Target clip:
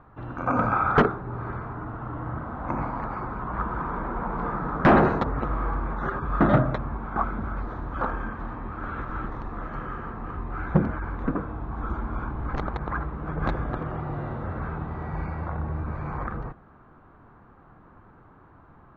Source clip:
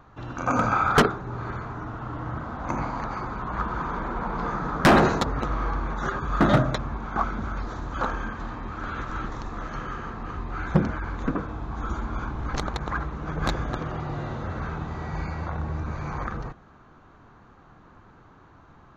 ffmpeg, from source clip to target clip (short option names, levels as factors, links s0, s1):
-af "lowpass=1800"